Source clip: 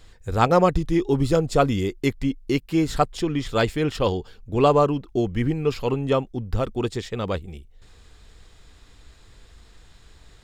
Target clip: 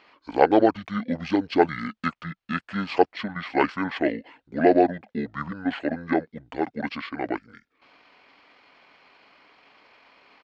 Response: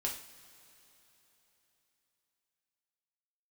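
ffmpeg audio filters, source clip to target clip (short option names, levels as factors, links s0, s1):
-af "highpass=650,lowpass=6000,asetrate=26990,aresample=44100,atempo=1.63392,volume=1.58"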